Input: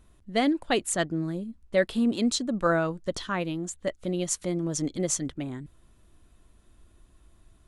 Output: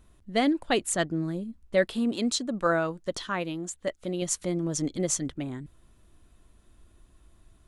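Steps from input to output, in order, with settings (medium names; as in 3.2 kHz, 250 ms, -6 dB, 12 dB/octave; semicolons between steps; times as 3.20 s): 1.89–4.22 s: bass shelf 190 Hz -7 dB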